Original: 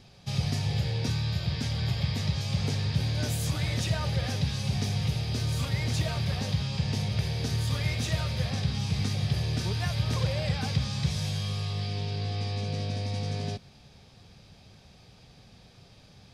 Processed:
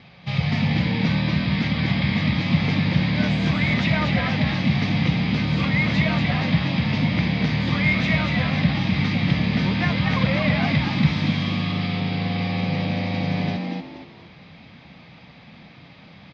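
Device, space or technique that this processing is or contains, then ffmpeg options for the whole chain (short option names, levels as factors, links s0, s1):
frequency-shifting delay pedal into a guitar cabinet: -filter_complex "[0:a]asplit=5[s0][s1][s2][s3][s4];[s1]adelay=236,afreqshift=81,volume=0.596[s5];[s2]adelay=472,afreqshift=162,volume=0.184[s6];[s3]adelay=708,afreqshift=243,volume=0.0575[s7];[s4]adelay=944,afreqshift=324,volume=0.0178[s8];[s0][s5][s6][s7][s8]amix=inputs=5:normalize=0,highpass=95,equalizer=f=110:t=q:w=4:g=-6,equalizer=f=160:t=q:w=4:g=4,equalizer=f=400:t=q:w=4:g=-7,equalizer=f=1100:t=q:w=4:g=4,equalizer=f=2100:t=q:w=4:g=10,lowpass=f=3800:w=0.5412,lowpass=f=3800:w=1.3066,volume=2.37"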